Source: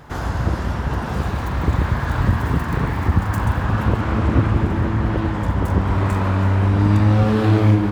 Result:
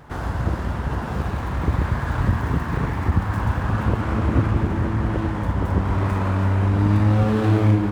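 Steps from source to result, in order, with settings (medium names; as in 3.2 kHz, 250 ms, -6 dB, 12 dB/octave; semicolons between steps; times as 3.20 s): median filter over 9 samples; trim -2.5 dB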